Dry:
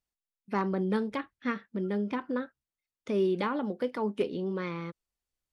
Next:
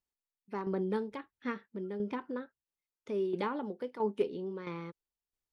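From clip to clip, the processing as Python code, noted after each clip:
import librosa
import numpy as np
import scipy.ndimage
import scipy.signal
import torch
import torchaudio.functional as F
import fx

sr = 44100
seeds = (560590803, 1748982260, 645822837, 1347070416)

y = fx.tremolo_shape(x, sr, shape='saw_down', hz=1.5, depth_pct=60)
y = fx.small_body(y, sr, hz=(410.0, 890.0), ring_ms=25, db=6)
y = y * 10.0 ** (-4.5 / 20.0)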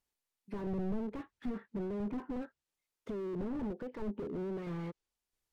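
y = fx.env_lowpass_down(x, sr, base_hz=390.0, full_db=-29.0)
y = fx.slew_limit(y, sr, full_power_hz=2.9)
y = y * 10.0 ** (5.0 / 20.0)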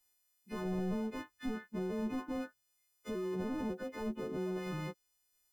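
y = fx.freq_snap(x, sr, grid_st=3)
y = y * 10.0 ** (1.0 / 20.0)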